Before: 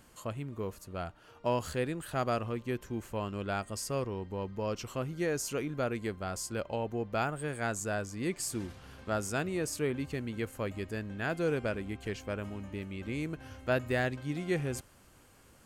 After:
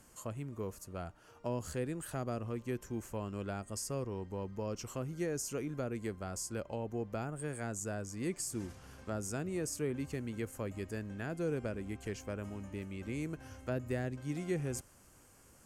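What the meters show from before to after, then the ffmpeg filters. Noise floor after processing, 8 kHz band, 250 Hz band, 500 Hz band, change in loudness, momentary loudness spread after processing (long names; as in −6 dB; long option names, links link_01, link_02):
−62 dBFS, −1.5 dB, −3.0 dB, −5.0 dB, −4.5 dB, 6 LU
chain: -filter_complex "[0:a]acrossover=split=460[link_01][link_02];[link_02]acompressor=threshold=-39dB:ratio=4[link_03];[link_01][link_03]amix=inputs=2:normalize=0,aemphasis=mode=reproduction:type=50fm,aexciter=amount=6.5:drive=2.8:freq=5400,volume=-3dB"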